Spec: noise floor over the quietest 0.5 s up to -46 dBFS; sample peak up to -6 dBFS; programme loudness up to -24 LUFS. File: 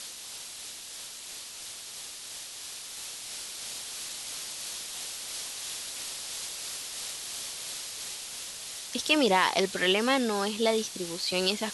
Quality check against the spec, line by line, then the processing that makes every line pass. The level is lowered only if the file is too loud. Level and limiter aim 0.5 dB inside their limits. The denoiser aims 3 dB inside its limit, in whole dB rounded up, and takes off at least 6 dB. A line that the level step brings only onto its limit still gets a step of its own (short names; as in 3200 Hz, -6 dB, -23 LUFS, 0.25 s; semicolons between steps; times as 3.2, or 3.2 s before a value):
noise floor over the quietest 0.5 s -43 dBFS: fail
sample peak -9.5 dBFS: OK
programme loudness -31.0 LUFS: OK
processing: denoiser 6 dB, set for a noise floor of -43 dBFS